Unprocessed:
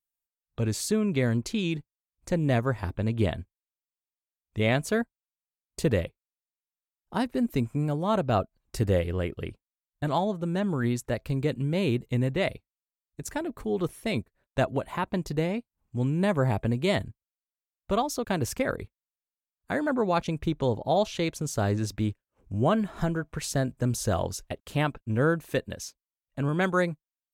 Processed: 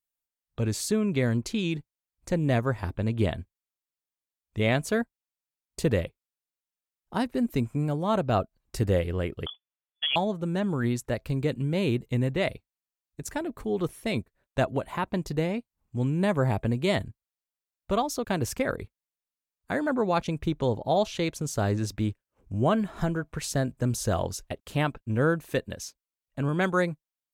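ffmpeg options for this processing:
-filter_complex "[0:a]asettb=1/sr,asplit=3[a][b][c];[a]atrim=end=9.464[d];[b]atrim=start=9.46:end=10.16,asetpts=PTS-STARTPTS,afade=t=in:d=0.004:c=qsin,afade=t=out:st=0.696:d=0.004:c=qsin,lowpass=f=3k:t=q:w=0.5098,lowpass=f=3k:t=q:w=0.6013,lowpass=f=3k:t=q:w=0.9,lowpass=f=3k:t=q:w=2.563,afreqshift=-3500[e];[c]atrim=start=10.156[f];[d][e]acrossfade=d=0.004:c1=hsin:c2=qsin[g];[g][f]acrossfade=d=0.004:c1=qsin:c2=hsin"

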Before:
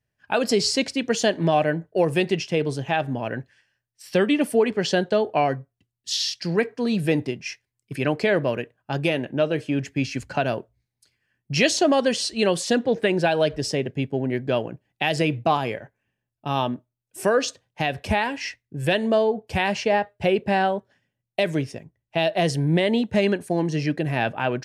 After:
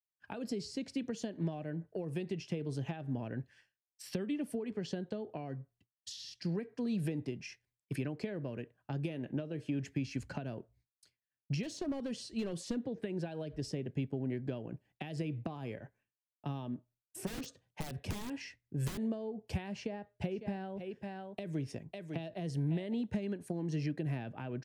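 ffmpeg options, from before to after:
-filter_complex "[0:a]asettb=1/sr,asplit=3[a][b][c];[a]atrim=end=11.634[d];[b]atrim=start=11.63:end=12.87,asetpts=PTS-STARTPTS,afade=t=in:d=0.004:c=qsin,afade=t=out:st=1.236:d=0.004:c=qsin,asoftclip=type=hard:threshold=-16.5dB[e];[c]atrim=start=12.866[f];[d][e]acrossfade=d=0.004:c1=hsin:c2=qsin[g];[g][f]acrossfade=d=0.004:c1=qsin:c2=hsin,asplit=3[h][i][j];[h]afade=t=out:st=17.26:d=0.02[k];[i]aeval=exprs='(mod(8.91*val(0)+1,2)-1)/8.91':c=same,afade=t=in:st=17.26:d=0.02,afade=t=out:st=18.97:d=0.02[l];[j]afade=t=in:st=18.97:d=0.02[m];[k][l][m]amix=inputs=3:normalize=0,asplit=3[n][o][p];[n]afade=t=out:st=20.3:d=0.02[q];[o]aecho=1:1:551:0.211,afade=t=in:st=20.3:d=0.02,afade=t=out:st=22.93:d=0.02[r];[p]afade=t=in:st=22.93:d=0.02[s];[q][r][s]amix=inputs=3:normalize=0,acompressor=threshold=-26dB:ratio=6,agate=range=-33dB:threshold=-57dB:ratio=3:detection=peak,acrossover=split=350[t][u];[u]acompressor=threshold=-42dB:ratio=6[v];[t][v]amix=inputs=2:normalize=0,volume=-4dB"

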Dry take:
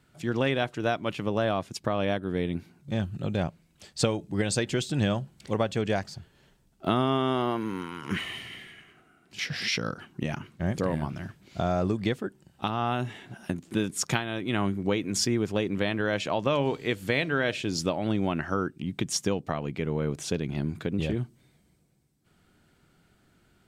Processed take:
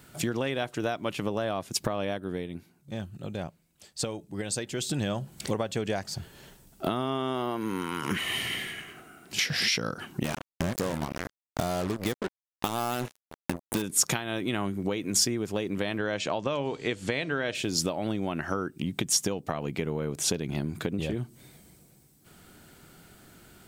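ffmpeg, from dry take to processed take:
-filter_complex "[0:a]asettb=1/sr,asplit=3[a][b][c];[a]atrim=end=10.244[d];[b]atrim=start=10.24:end=13.82,asetpts=PTS-STARTPTS,afade=t=in:d=0.004:c=qsin,afade=t=out:st=3.576:d=0.004:c=qsin,acrusher=bits=4:mix=0:aa=0.5[e];[c]atrim=start=13.816[f];[d][e]acrossfade=d=0.004:c1=hsin:c2=qsin[g];[g][f]acrossfade=d=0.004:c1=qsin:c2=hsin,asettb=1/sr,asplit=3[h][i][j];[h]atrim=end=15.984[k];[i]atrim=start=15.98:end=17.55,asetpts=PTS-STARTPTS,afade=t=in:d=0.004:c=qsin,afade=t=out:st=1.566:d=0.004:c=qsin,lowpass=f=8.1k:w=0.5412,lowpass=f=8.1k:w=1.3066[l];[j]atrim=start=17.546[m];[k][l]acrossfade=d=0.004:c1=hsin:c2=qsin[n];[n][m]acrossfade=d=0.004:c1=qsin:c2=hsin,asplit=3[o][p][q];[o]atrim=end=2.48,asetpts=PTS-STARTPTS,afade=t=out:st=2:d=0.48:silence=0.158489[r];[p]atrim=start=2.48:end=4.74,asetpts=PTS-STARTPTS,volume=-16dB[s];[q]atrim=start=4.74,asetpts=PTS-STARTPTS,afade=t=in:d=0.48:silence=0.158489[t];[r][s][t]concat=n=3:v=0:a=1,equalizer=f=590:w=0.42:g=3.5,acompressor=threshold=-35dB:ratio=6,aemphasis=mode=production:type=50kf,volume=7.5dB"

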